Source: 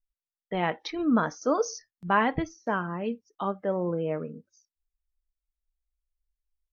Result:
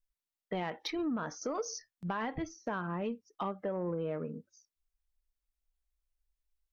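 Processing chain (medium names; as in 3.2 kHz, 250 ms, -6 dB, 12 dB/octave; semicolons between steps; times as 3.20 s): peak limiter -19 dBFS, peak gain reduction 8.5 dB; compression 5:1, threshold -31 dBFS, peak gain reduction 8.5 dB; saturation -25 dBFS, distortion -22 dB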